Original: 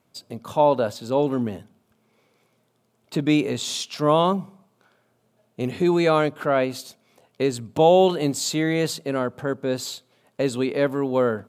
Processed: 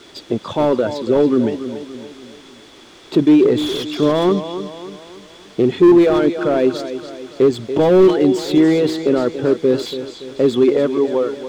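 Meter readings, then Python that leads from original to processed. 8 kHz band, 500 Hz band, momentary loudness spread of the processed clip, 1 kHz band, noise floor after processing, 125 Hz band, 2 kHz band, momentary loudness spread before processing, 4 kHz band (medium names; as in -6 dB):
no reading, +7.0 dB, 17 LU, -1.5 dB, -43 dBFS, +2.5 dB, +1.0 dB, 12 LU, +3.0 dB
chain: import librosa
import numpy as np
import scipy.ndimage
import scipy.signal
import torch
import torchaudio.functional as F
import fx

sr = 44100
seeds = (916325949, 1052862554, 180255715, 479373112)

p1 = fx.fade_out_tail(x, sr, length_s=0.76)
p2 = scipy.signal.sosfilt(scipy.signal.butter(2, 58.0, 'highpass', fs=sr, output='sos'), p1)
p3 = fx.dereverb_blind(p2, sr, rt60_s=1.5)
p4 = fx.over_compress(p3, sr, threshold_db=-29.0, ratio=-1.0)
p5 = p3 + (p4 * librosa.db_to_amplitude(-1.0))
p6 = fx.leveller(p5, sr, passes=1)
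p7 = fx.quant_dither(p6, sr, seeds[0], bits=6, dither='triangular')
p8 = fx.air_absorb(p7, sr, metres=120.0)
p9 = fx.small_body(p8, sr, hz=(350.0, 3400.0), ring_ms=25, db=14)
p10 = p9 + fx.echo_feedback(p9, sr, ms=285, feedback_pct=47, wet_db=-11.5, dry=0)
p11 = fx.slew_limit(p10, sr, full_power_hz=280.0)
y = p11 * librosa.db_to_amplitude(-4.0)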